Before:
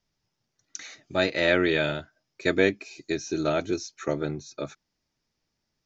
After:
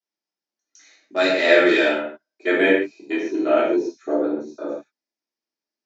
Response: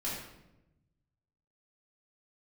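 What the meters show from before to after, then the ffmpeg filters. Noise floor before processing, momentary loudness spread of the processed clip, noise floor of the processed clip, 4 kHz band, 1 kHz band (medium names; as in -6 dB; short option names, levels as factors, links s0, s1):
-81 dBFS, 16 LU, under -85 dBFS, +4.0 dB, +7.0 dB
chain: -filter_complex "[0:a]highpass=f=290:w=0.5412,highpass=f=290:w=1.3066,afwtdn=0.0178[s0];[1:a]atrim=start_sample=2205,afade=t=out:st=0.22:d=0.01,atrim=end_sample=10143[s1];[s0][s1]afir=irnorm=-1:irlink=0,volume=1.5"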